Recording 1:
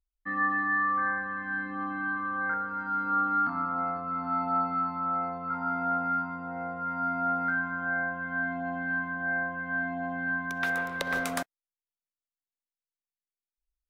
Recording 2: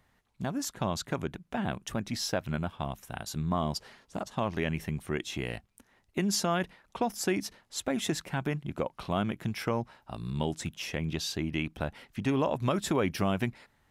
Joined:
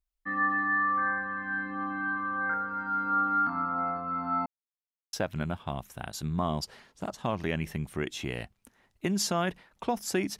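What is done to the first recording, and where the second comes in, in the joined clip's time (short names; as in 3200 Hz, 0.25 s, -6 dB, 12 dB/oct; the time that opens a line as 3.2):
recording 1
4.46–5.13 mute
5.13 switch to recording 2 from 2.26 s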